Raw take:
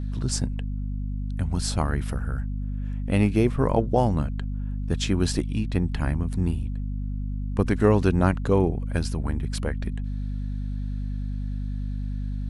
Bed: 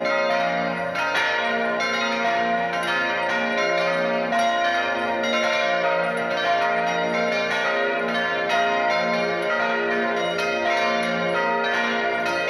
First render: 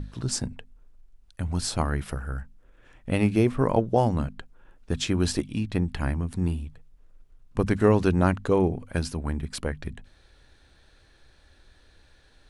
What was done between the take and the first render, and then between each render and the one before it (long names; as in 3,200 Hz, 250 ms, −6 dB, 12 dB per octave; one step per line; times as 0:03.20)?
mains-hum notches 50/100/150/200/250 Hz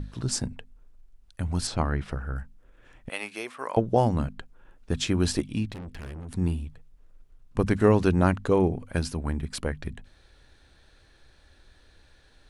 0:01.67–0:02.36: high-frequency loss of the air 97 metres
0:03.09–0:03.77: Bessel high-pass filter 1,100 Hz
0:05.72–0:06.29: tube saturation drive 36 dB, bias 0.6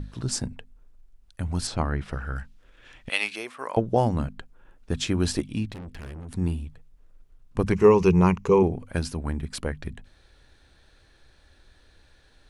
0:02.13–0:03.36: parametric band 3,700 Hz +12 dB 2.2 octaves
0:07.72–0:08.63: EQ curve with evenly spaced ripples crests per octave 0.78, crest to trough 13 dB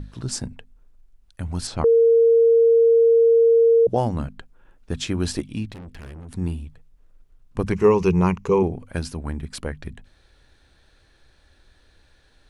0:01.84–0:03.87: beep over 460 Hz −11.5 dBFS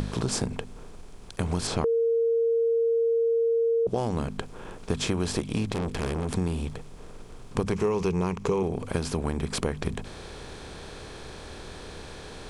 compressor on every frequency bin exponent 0.6
downward compressor 6 to 1, threshold −23 dBFS, peak gain reduction 12.5 dB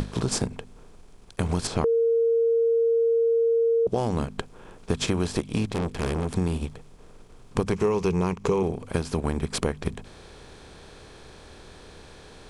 in parallel at −1.5 dB: output level in coarse steps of 15 dB
on the sum: expander for the loud parts 1.5 to 1, over −38 dBFS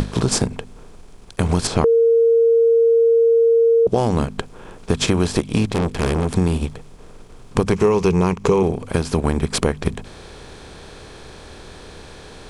level +7.5 dB
brickwall limiter −3 dBFS, peak gain reduction 2 dB